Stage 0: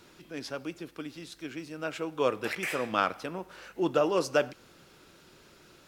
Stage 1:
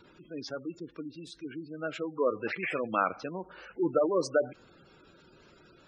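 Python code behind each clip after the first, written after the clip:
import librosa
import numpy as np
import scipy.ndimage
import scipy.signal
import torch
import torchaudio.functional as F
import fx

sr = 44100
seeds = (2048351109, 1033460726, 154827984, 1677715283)

y = fx.spec_gate(x, sr, threshold_db=-15, keep='strong')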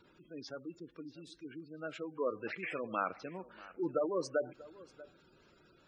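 y = x + 10.0 ** (-20.0 / 20.0) * np.pad(x, (int(639 * sr / 1000.0), 0))[:len(x)]
y = y * librosa.db_to_amplitude(-7.0)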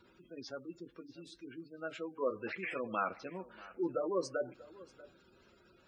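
y = fx.notch_comb(x, sr, f0_hz=150.0)
y = y * librosa.db_to_amplitude(1.5)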